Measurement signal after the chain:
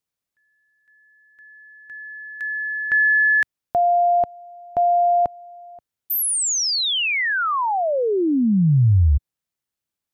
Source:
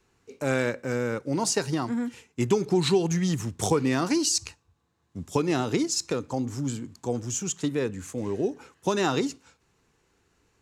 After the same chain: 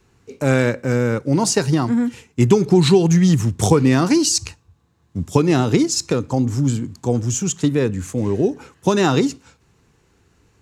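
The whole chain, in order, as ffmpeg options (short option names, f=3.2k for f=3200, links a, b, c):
-af "equalizer=f=100:t=o:w=2.6:g=7.5,volume=6.5dB"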